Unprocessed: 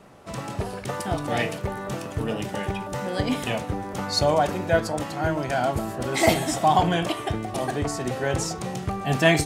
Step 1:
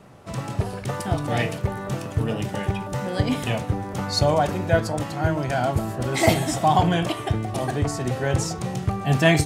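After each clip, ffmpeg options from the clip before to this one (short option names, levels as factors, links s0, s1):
-af "equalizer=f=110:t=o:w=1.2:g=7.5"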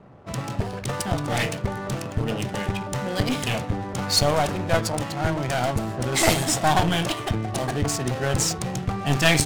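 -af "aeval=exprs='clip(val(0),-1,0.0562)':c=same,crystalizer=i=3:c=0,adynamicsmooth=sensitivity=7.5:basefreq=1100"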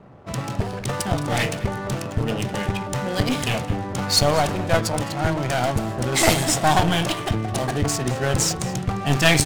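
-af "aecho=1:1:211:0.133,volume=1.26"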